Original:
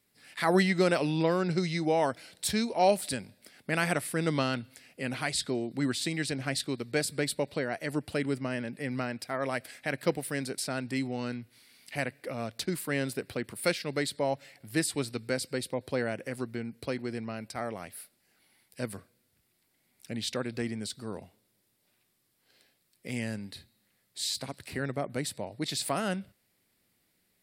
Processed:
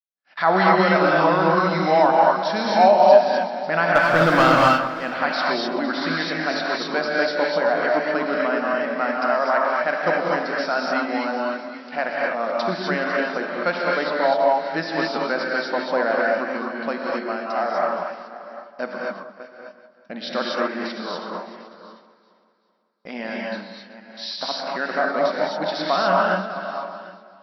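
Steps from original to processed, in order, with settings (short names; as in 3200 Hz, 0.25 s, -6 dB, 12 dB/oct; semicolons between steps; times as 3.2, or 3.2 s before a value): regenerating reverse delay 0.375 s, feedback 44%, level -13.5 dB; FFT band-pass 160–5800 Hz; gate -52 dBFS, range -43 dB; band shelf 980 Hz +12 dB; in parallel at -2 dB: limiter -15.5 dBFS, peak gain reduction 11 dB; 3.95–4.52 on the sum: sample leveller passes 2; 13.21–14.28 air absorption 91 m; on a send: echo with dull and thin repeats by turns 0.191 s, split 1400 Hz, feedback 61%, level -12 dB; on the sum: non-linear reverb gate 0.28 s rising, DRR -3 dB; gain -3.5 dB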